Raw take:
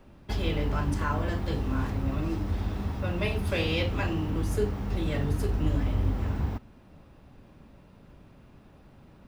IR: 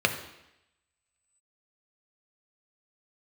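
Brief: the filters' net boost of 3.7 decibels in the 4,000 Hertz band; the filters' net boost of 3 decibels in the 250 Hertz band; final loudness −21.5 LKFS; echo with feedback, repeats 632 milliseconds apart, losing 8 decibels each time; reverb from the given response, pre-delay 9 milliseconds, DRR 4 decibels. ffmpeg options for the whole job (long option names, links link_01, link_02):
-filter_complex "[0:a]equalizer=frequency=250:width_type=o:gain=4,equalizer=frequency=4000:width_type=o:gain=5,aecho=1:1:632|1264|1896|2528|3160:0.398|0.159|0.0637|0.0255|0.0102,asplit=2[link_01][link_02];[1:a]atrim=start_sample=2205,adelay=9[link_03];[link_02][link_03]afir=irnorm=-1:irlink=0,volume=-18dB[link_04];[link_01][link_04]amix=inputs=2:normalize=0,volume=6dB"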